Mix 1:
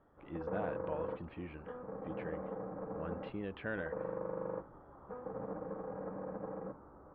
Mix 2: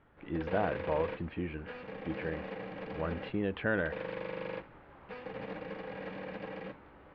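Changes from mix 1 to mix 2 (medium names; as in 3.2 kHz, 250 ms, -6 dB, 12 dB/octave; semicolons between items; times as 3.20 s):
speech +8.5 dB; background: remove Chebyshev low-pass 1.3 kHz, order 4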